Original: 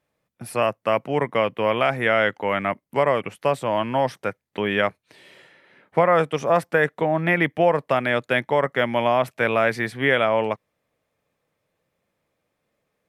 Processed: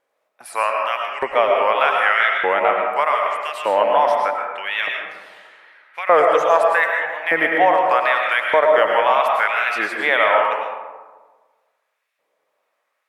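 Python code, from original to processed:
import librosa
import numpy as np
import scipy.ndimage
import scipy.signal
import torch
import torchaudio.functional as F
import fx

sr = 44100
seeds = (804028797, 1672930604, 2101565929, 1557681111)

y = fx.filter_lfo_highpass(x, sr, shape='saw_up', hz=0.82, low_hz=430.0, high_hz=2400.0, q=1.2)
y = fx.wow_flutter(y, sr, seeds[0], rate_hz=2.1, depth_cents=120.0)
y = fx.peak_eq(y, sr, hz=1000.0, db=4.5, octaves=1.8)
y = fx.rev_freeverb(y, sr, rt60_s=1.4, hf_ratio=0.4, predelay_ms=70, drr_db=0.5)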